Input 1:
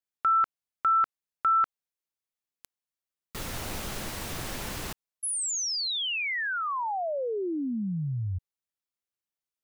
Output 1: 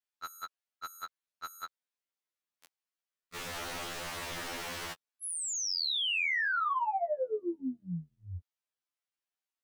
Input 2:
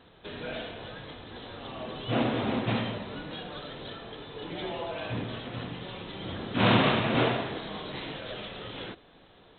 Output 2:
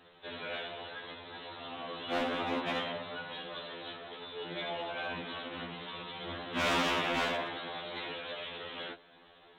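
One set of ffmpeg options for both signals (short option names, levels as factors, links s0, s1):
-filter_complex "[0:a]asplit=2[s0][s1];[s1]highpass=f=720:p=1,volume=5.01,asoftclip=type=tanh:threshold=0.335[s2];[s0][s2]amix=inputs=2:normalize=0,lowpass=f=3900:p=1,volume=0.501,asoftclip=type=hard:threshold=0.112,afftfilt=real='re*2*eq(mod(b,4),0)':imag='im*2*eq(mod(b,4),0)':win_size=2048:overlap=0.75,volume=0.531"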